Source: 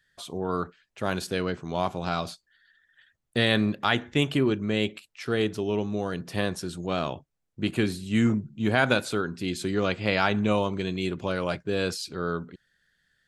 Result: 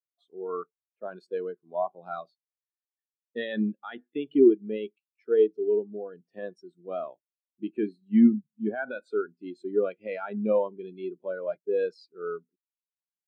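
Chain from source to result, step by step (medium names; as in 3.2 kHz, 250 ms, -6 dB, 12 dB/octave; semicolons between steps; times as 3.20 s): Bessel high-pass 320 Hz, order 2; peak limiter -16 dBFS, peak gain reduction 8.5 dB; spectral contrast expander 2.5:1; trim +7.5 dB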